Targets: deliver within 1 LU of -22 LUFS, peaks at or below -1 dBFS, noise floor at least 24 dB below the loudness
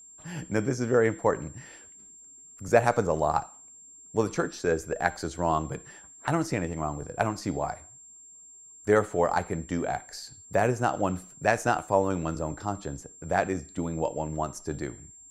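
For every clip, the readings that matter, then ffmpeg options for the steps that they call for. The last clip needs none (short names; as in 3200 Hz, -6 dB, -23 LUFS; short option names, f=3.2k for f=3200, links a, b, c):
steady tone 7400 Hz; tone level -48 dBFS; loudness -28.5 LUFS; peak -6.0 dBFS; loudness target -22.0 LUFS
-> -af "bandreject=f=7.4k:w=30"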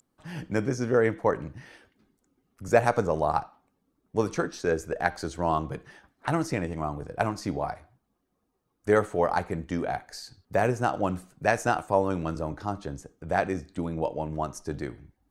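steady tone none; loudness -28.5 LUFS; peak -6.0 dBFS; loudness target -22.0 LUFS
-> -af "volume=6.5dB,alimiter=limit=-1dB:level=0:latency=1"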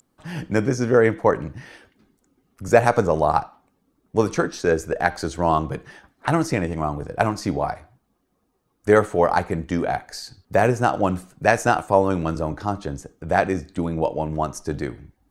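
loudness -22.0 LUFS; peak -1.0 dBFS; noise floor -70 dBFS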